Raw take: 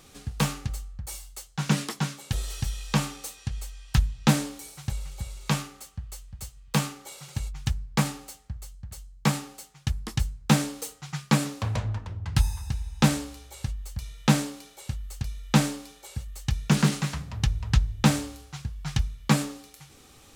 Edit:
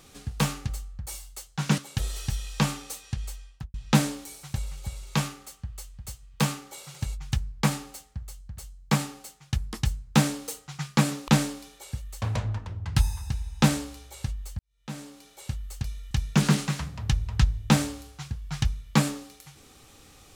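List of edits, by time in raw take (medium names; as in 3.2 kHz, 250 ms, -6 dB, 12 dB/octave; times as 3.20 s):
1.78–2.12 s: delete
3.65–4.08 s: studio fade out
13.99–14.84 s: fade in quadratic
15.51–16.45 s: move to 11.62 s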